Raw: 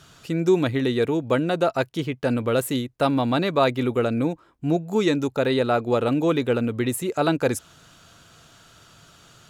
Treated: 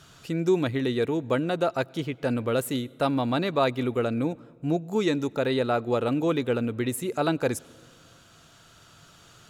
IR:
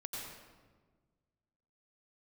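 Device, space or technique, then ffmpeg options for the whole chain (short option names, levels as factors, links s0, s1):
ducked reverb: -filter_complex "[0:a]asplit=3[s0][s1][s2];[1:a]atrim=start_sample=2205[s3];[s1][s3]afir=irnorm=-1:irlink=0[s4];[s2]apad=whole_len=418754[s5];[s4][s5]sidechaincompress=threshold=0.0224:ratio=20:attack=6.1:release=1470,volume=0.562[s6];[s0][s6]amix=inputs=2:normalize=0,volume=0.631"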